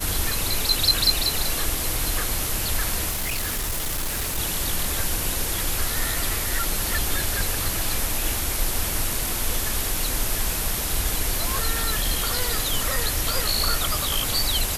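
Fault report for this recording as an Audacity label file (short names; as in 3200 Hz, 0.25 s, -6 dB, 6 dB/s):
3.100000	4.390000	clipped -22.5 dBFS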